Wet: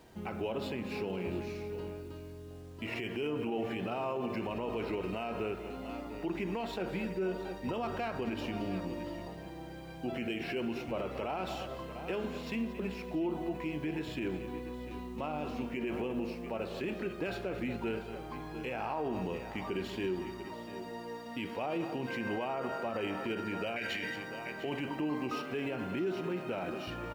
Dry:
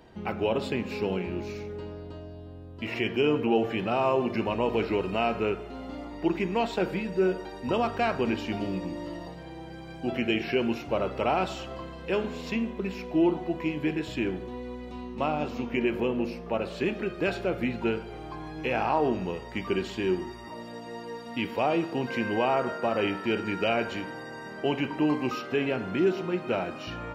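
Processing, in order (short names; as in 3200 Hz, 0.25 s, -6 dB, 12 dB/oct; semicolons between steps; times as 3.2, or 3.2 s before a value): median filter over 5 samples; 23.76–24.16 resonant high shelf 1500 Hz +8.5 dB, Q 3; requantised 10-bit, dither none; tapped delay 0.226/0.694 s -15.5/-16.5 dB; limiter -22.5 dBFS, peak gain reduction 13.5 dB; 2.02–2.51 bell 690 Hz -12.5 dB 0.36 oct; gain -4 dB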